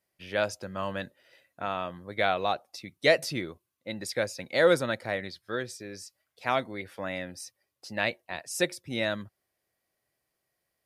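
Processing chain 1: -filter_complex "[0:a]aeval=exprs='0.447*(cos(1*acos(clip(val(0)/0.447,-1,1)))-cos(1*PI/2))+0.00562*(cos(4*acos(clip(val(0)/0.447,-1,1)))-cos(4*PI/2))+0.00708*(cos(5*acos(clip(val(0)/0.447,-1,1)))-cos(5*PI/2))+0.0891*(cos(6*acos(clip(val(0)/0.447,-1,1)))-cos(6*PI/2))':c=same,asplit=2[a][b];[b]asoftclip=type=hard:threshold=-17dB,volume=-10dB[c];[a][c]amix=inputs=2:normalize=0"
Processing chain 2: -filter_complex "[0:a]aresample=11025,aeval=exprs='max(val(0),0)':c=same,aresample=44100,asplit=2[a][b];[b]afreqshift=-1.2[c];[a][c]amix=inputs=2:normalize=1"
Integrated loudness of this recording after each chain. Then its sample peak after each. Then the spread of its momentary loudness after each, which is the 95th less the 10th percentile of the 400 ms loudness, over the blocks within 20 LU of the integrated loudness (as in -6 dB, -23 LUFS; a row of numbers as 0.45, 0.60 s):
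-26.5, -37.0 LUFS; -5.5, -14.0 dBFS; 18, 15 LU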